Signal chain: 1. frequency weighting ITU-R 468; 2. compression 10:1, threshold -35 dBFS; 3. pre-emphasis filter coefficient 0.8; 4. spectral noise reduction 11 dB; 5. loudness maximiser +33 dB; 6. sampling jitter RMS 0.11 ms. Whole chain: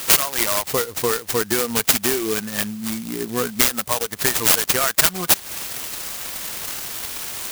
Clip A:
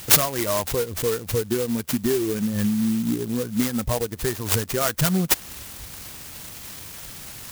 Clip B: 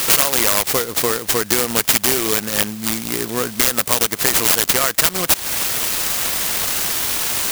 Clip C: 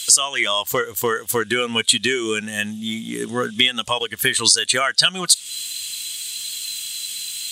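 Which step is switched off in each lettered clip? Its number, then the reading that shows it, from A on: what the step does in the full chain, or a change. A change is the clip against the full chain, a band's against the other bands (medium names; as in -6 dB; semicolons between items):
1, 125 Hz band +13.0 dB; 4, crest factor change -3.5 dB; 6, 4 kHz band +6.0 dB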